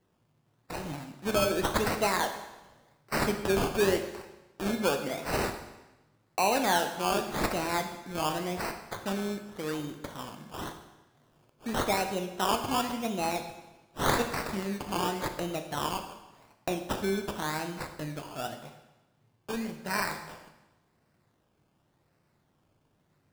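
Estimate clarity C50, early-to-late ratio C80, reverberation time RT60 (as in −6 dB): 8.5 dB, 10.5 dB, 1.0 s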